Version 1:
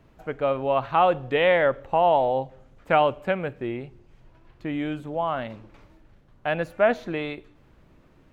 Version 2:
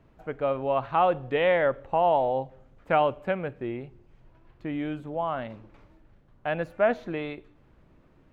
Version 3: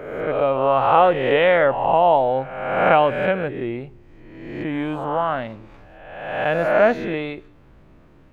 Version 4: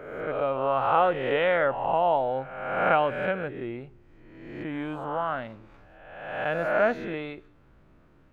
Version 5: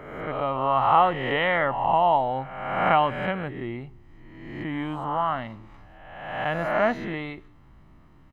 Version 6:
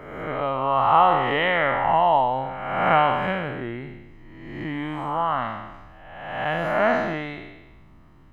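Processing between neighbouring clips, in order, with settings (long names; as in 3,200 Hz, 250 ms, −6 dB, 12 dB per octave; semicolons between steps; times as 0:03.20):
high-shelf EQ 3,400 Hz −7.5 dB; level −2.5 dB
peak hold with a rise ahead of every peak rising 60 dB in 1.17 s; level +5.5 dB
parametric band 1,400 Hz +5 dB 0.38 octaves; level −8 dB
comb filter 1 ms, depth 54%; level +2.5 dB
peak hold with a decay on every bin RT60 1.10 s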